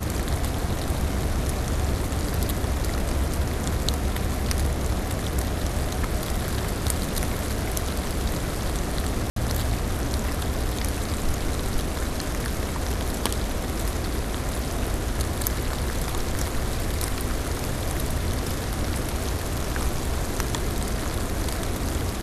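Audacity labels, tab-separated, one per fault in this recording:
9.300000	9.360000	drop-out 63 ms

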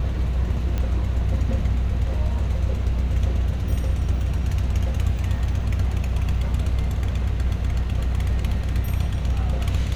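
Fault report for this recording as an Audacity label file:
0.780000	0.780000	click −14 dBFS

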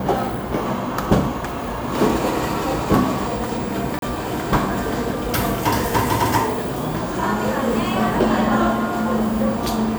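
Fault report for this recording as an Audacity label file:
3.990000	4.020000	drop-out 32 ms

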